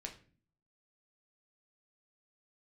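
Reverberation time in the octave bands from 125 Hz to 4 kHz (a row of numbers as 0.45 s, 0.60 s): 0.75 s, 0.70 s, 0.50 s, 0.35 s, 0.40 s, 0.30 s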